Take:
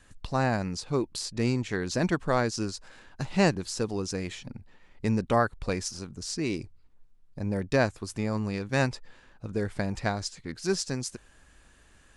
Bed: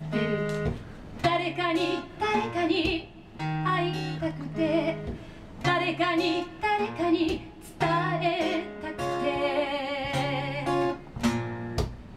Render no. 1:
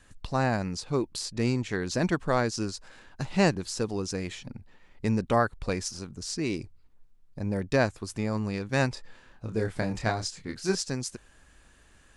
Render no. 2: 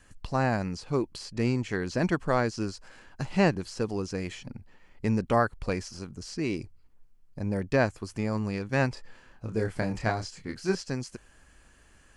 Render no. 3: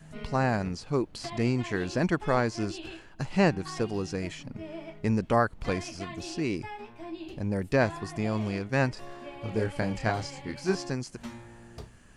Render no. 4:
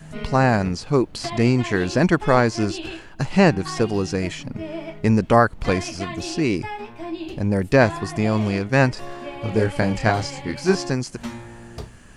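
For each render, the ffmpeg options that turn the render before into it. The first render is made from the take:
-filter_complex "[0:a]asettb=1/sr,asplit=3[a][b][c];[a]atrim=end=8.944[d];[b]atrim=start=8.94:end=10.75,asetpts=PTS-STARTPTS,afade=t=in:d=0.004:c=qsin,afade=t=out:st=1.806:d=0.004:c=qsin,asplit=2[e][f];[f]adelay=27,volume=-5dB[g];[e][g]amix=inputs=2:normalize=0,atrim=end_sample=79821[h];[c]atrim=start=10.746[i];[d][h]acrossfade=d=0.004:c1=hsin:c2=qsin[j];[j][i]acrossfade=d=0.004:c1=qsin:c2=hsin"
-filter_complex "[0:a]bandreject=f=3.7k:w=8.5,acrossover=split=4100[a][b];[b]acompressor=threshold=-45dB:ratio=4:attack=1:release=60[c];[a][c]amix=inputs=2:normalize=0"
-filter_complex "[1:a]volume=-15.5dB[a];[0:a][a]amix=inputs=2:normalize=0"
-af "volume=9dB,alimiter=limit=-2dB:level=0:latency=1"

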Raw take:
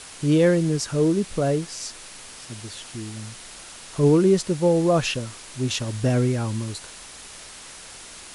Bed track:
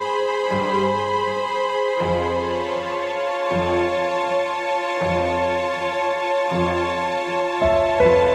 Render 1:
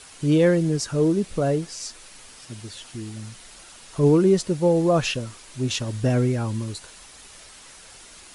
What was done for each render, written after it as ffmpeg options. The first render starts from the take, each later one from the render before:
-af "afftdn=nr=6:nf=-42"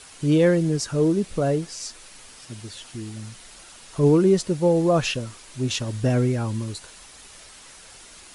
-af anull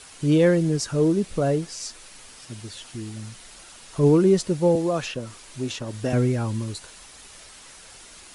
-filter_complex "[0:a]asettb=1/sr,asplit=3[a][b][c];[a]atrim=end=4.754[d];[b]atrim=start=4.75:end=6.13,asetpts=PTS-STARTPTS,afade=t=in:d=0.004:c=qsin,afade=t=out:st=1.376:d=0.004:c=qsin,acrossover=split=220|1700[e][f][g];[e]acompressor=threshold=-36dB:ratio=4[h];[f]acompressor=threshold=-22dB:ratio=4[i];[g]acompressor=threshold=-34dB:ratio=4[j];[h][i][j]amix=inputs=3:normalize=0[k];[c]atrim=start=6.126[l];[d][k]acrossfade=d=0.004:c1=hsin:c2=qsin[m];[m][l]acrossfade=d=0.004:c1=qsin:c2=hsin"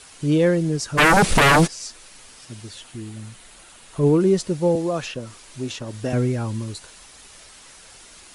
-filter_complex "[0:a]asplit=3[a][b][c];[a]afade=t=out:st=0.97:d=0.02[d];[b]aeval=exprs='0.299*sin(PI/2*6.31*val(0)/0.299)':c=same,afade=t=in:st=0.97:d=0.02,afade=t=out:st=1.66:d=0.02[e];[c]afade=t=in:st=1.66:d=0.02[f];[d][e][f]amix=inputs=3:normalize=0,asettb=1/sr,asplit=3[g][h][i];[g]atrim=end=2.814[j];[h]atrim=start=2.81:end=4.21,asetpts=PTS-STARTPTS,afade=t=in:d=0.004:c=qsin,afade=t=out:st=1.396:d=0.004:c=qsin,equalizer=f=5.4k:w=2.1:g=-5.5[k];[i]atrim=start=4.206[l];[j][k]acrossfade=d=0.004:c1=hsin:c2=qsin[m];[m][l]acrossfade=d=0.004:c1=qsin:c2=hsin"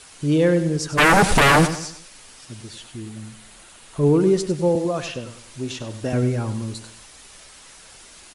-af "aecho=1:1:97|194|291|388:0.266|0.104|0.0405|0.0158"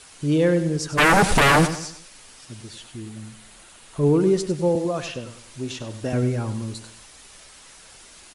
-af "volume=-1.5dB"

